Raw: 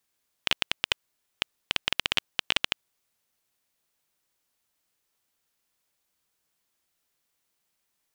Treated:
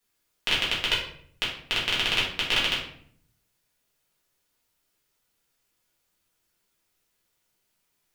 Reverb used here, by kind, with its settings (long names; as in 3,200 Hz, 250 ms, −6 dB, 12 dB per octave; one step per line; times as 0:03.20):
rectangular room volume 89 cubic metres, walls mixed, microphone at 1.8 metres
level −4 dB